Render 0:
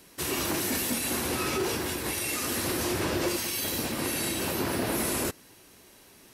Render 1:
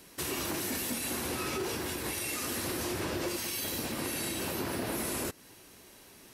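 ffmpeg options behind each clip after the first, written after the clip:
ffmpeg -i in.wav -af "acompressor=threshold=-35dB:ratio=2" out.wav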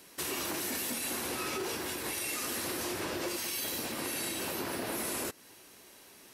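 ffmpeg -i in.wav -af "lowshelf=frequency=180:gain=-10.5" out.wav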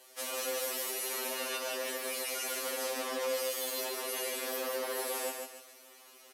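ffmpeg -i in.wav -af "afreqshift=170,aecho=1:1:146|292|438|584|730:0.596|0.22|0.0815|0.0302|0.0112,afftfilt=real='re*2.45*eq(mod(b,6),0)':imag='im*2.45*eq(mod(b,6),0)':win_size=2048:overlap=0.75" out.wav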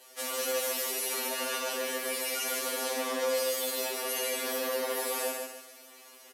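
ffmpeg -i in.wav -af "aecho=1:1:12|62:0.631|0.422,volume=1.5dB" out.wav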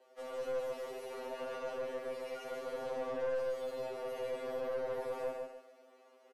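ffmpeg -i in.wav -filter_complex "[0:a]bandpass=frequency=470:width_type=q:width=1:csg=0,aeval=exprs='(tanh(28.2*val(0)+0.3)-tanh(0.3))/28.2':channel_layout=same,asplit=2[link_01][link_02];[link_02]adelay=14,volume=-11.5dB[link_03];[link_01][link_03]amix=inputs=2:normalize=0,volume=-1.5dB" out.wav

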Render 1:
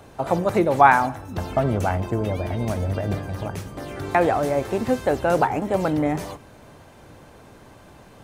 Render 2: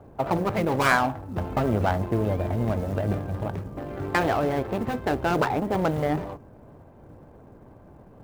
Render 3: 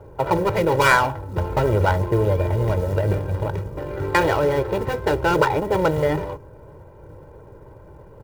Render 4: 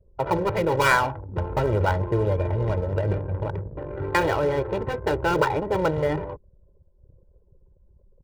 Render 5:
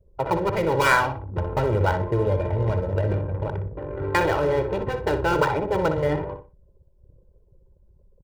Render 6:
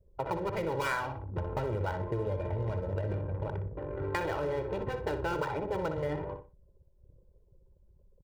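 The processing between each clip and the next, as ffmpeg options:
ffmpeg -i in.wav -af "adynamicsmooth=sensitivity=2:basefreq=790,acrusher=bits=8:mode=log:mix=0:aa=0.000001,afftfilt=real='re*lt(hypot(re,im),0.794)':imag='im*lt(hypot(re,im),0.794)':win_size=1024:overlap=0.75" out.wav
ffmpeg -i in.wav -af "aecho=1:1:2.1:0.77,volume=3.5dB" out.wav
ffmpeg -i in.wav -af "anlmdn=25.1,volume=-3.5dB" out.wav
ffmpeg -i in.wav -filter_complex "[0:a]asplit=2[link_01][link_02];[link_02]adelay=61,lowpass=frequency=3600:poles=1,volume=-8dB,asplit=2[link_03][link_04];[link_04]adelay=61,lowpass=frequency=3600:poles=1,volume=0.26,asplit=2[link_05][link_06];[link_06]adelay=61,lowpass=frequency=3600:poles=1,volume=0.26[link_07];[link_01][link_03][link_05][link_07]amix=inputs=4:normalize=0" out.wav
ffmpeg -i in.wav -af "acompressor=threshold=-25dB:ratio=3,volume=-5.5dB" out.wav

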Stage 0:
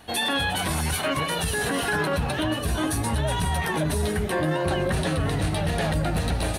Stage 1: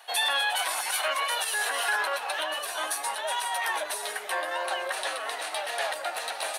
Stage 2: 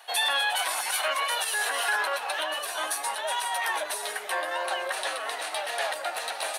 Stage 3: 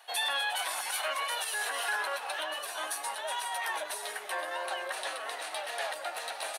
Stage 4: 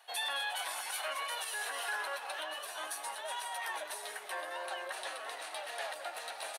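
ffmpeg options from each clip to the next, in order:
ffmpeg -i in.wav -af "highpass=frequency=650:width=0.5412,highpass=frequency=650:width=1.3066" out.wav
ffmpeg -i in.wav -af "acontrast=54,volume=-5.5dB" out.wav
ffmpeg -i in.wav -af "aecho=1:1:479:0.133,volume=-5.5dB" out.wav
ffmpeg -i in.wav -af "aecho=1:1:214:0.188,volume=-5dB" out.wav

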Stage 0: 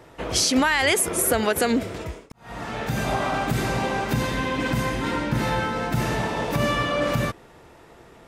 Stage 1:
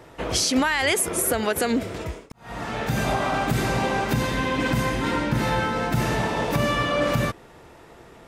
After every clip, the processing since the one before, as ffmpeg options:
ffmpeg -i in.wav -af "alimiter=limit=-13dB:level=0:latency=1:release=454,volume=1.5dB" out.wav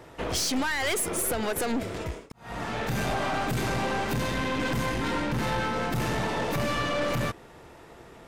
ffmpeg -i in.wav -af "aeval=exprs='(tanh(15.8*val(0)+0.4)-tanh(0.4))/15.8':channel_layout=same" out.wav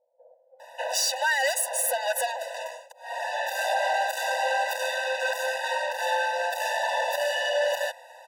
ffmpeg -i in.wav -filter_complex "[0:a]acrossover=split=310[link_01][link_02];[link_02]adelay=600[link_03];[link_01][link_03]amix=inputs=2:normalize=0,afftfilt=real='re*eq(mod(floor(b*sr/1024/500),2),1)':imag='im*eq(mod(floor(b*sr/1024/500),2),1)':win_size=1024:overlap=0.75,volume=6dB" out.wav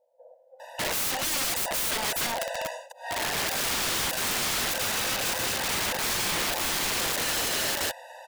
ffmpeg -i in.wav -af "aeval=exprs='(mod(20*val(0)+1,2)-1)/20':channel_layout=same,volume=3dB" out.wav

